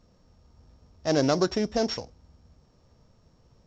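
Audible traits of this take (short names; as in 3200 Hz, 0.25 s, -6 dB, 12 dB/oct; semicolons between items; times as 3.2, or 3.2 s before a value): a buzz of ramps at a fixed pitch in blocks of 8 samples; µ-law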